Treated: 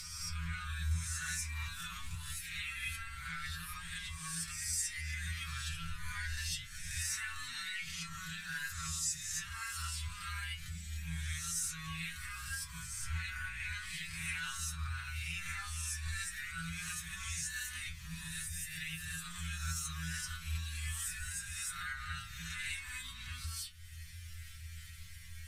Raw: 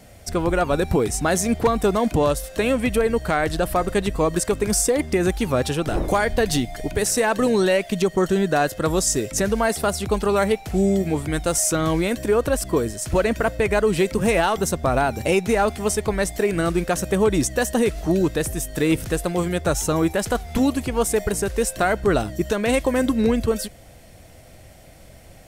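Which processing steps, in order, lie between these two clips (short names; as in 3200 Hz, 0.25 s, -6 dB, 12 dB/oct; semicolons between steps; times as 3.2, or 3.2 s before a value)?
spectral swells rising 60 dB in 0.95 s; inverse Chebyshev band-stop 310–620 Hz, stop band 70 dB; high shelf 10000 Hz -5.5 dB; notches 50/100/150/200/250 Hz; upward compressor, threshold -20 dBFS; metallic resonator 82 Hz, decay 0.48 s, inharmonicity 0.002; gain -5 dB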